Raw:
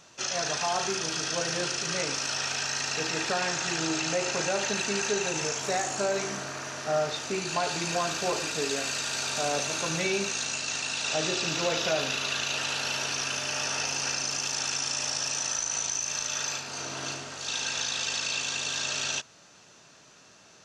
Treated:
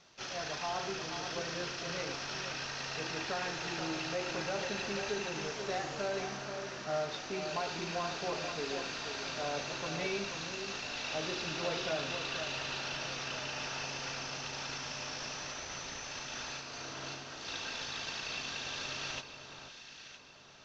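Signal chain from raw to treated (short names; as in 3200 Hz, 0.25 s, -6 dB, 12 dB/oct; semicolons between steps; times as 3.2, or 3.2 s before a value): CVSD 32 kbps; on a send: echo with dull and thin repeats by turns 0.482 s, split 1400 Hz, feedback 61%, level -7 dB; on the sum: gain -7.5 dB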